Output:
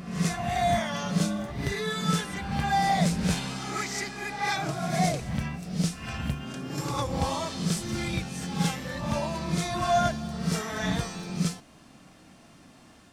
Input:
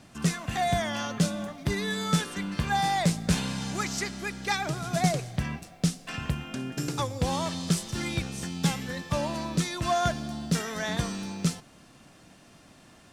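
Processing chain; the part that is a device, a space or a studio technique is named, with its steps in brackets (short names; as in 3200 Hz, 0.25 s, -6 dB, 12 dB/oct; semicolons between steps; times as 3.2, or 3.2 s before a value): reverse reverb (reverse; reverb RT60 0.95 s, pre-delay 18 ms, DRR 0 dB; reverse); gain -2.5 dB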